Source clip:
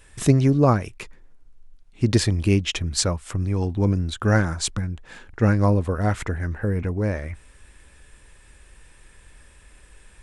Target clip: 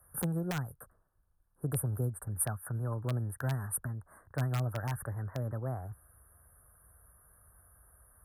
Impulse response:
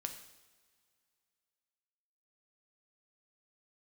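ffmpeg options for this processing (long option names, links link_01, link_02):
-filter_complex "[0:a]highpass=66,equalizer=frequency=230:width_type=o:width=2.3:gain=-14,acrossover=split=150|3000[link_01][link_02][link_03];[link_02]acompressor=threshold=-32dB:ratio=6[link_04];[link_01][link_04][link_03]amix=inputs=3:normalize=0,asuperstop=centerf=3200:order=20:qfactor=0.54,asetrate=54684,aresample=44100,acrossover=split=310|1400|2600[link_05][link_06][link_07][link_08];[link_06]aeval=exprs='(mod(25.1*val(0)+1,2)-1)/25.1':channel_layout=same[link_09];[link_05][link_09][link_07][link_08]amix=inputs=4:normalize=0,volume=-3dB"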